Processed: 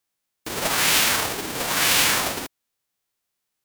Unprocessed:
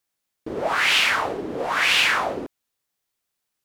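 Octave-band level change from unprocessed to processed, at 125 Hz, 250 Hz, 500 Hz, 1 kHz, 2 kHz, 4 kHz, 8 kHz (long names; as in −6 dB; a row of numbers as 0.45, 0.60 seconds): +5.5, +0.5, −3.0, −2.0, −3.5, +0.5, +11.5 decibels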